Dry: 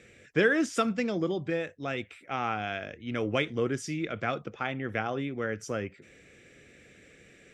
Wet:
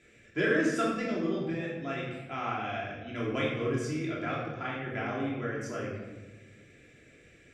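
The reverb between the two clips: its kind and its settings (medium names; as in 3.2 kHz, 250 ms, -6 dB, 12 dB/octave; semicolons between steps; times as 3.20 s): simulated room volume 740 m³, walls mixed, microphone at 3 m; trim -9 dB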